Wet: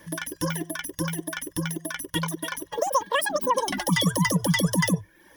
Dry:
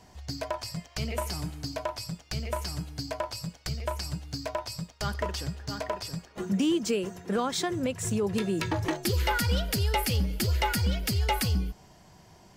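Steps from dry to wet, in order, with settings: speed mistake 33 rpm record played at 78 rpm; reverb removal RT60 0.61 s; ripple EQ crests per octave 1.2, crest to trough 13 dB; ending taper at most 510 dB/s; gain +2 dB

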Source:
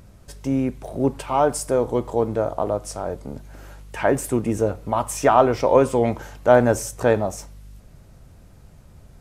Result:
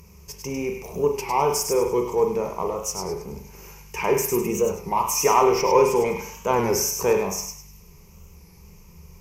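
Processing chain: high shelf 3600 Hz +10.5 dB; thin delay 0.101 s, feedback 30%, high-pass 1700 Hz, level -5 dB; in parallel at -7 dB: soft clip -15.5 dBFS, distortion -9 dB; on the sum: ripple EQ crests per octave 0.79, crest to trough 16 dB; on a send at -4.5 dB: reverb, pre-delay 41 ms; on the sum: record warp 33 1/3 rpm, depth 100 cents; gain -8 dB

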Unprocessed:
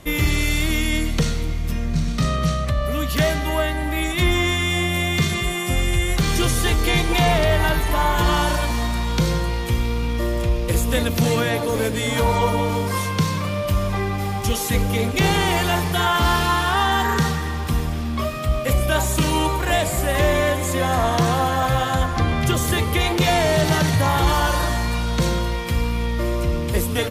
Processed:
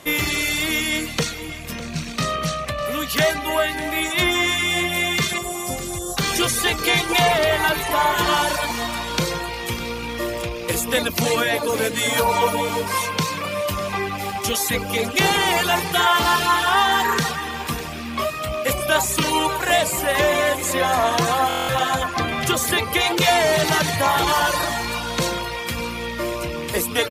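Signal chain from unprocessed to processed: rattling part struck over -29 dBFS, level -28 dBFS; HPF 440 Hz 6 dB/oct; reverb removal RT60 0.66 s; 5.38–6.17 Chebyshev band-stop 1000–5100 Hz, order 2; 11.98–12.7 high shelf 11000 Hz +8 dB; echo 0.602 s -15 dB; stuck buffer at 21.48, samples 1024, times 8; gain +4.5 dB

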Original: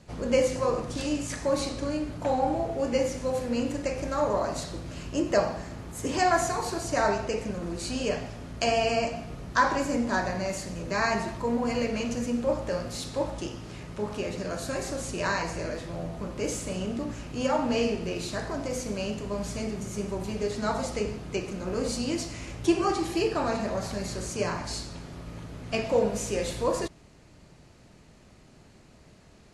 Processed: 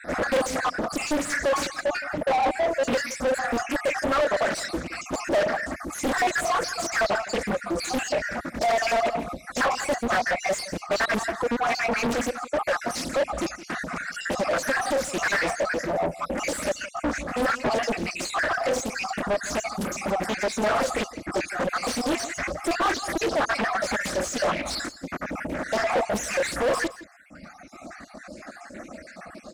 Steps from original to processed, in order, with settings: random spectral dropouts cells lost 53%; fixed phaser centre 630 Hz, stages 8; dynamic EQ 270 Hz, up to -5 dB, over -45 dBFS, Q 0.76; reverb removal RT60 1.8 s; overdrive pedal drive 35 dB, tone 2200 Hz, clips at -14.5 dBFS; echo 0.167 s -16.5 dB; Doppler distortion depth 0.79 ms

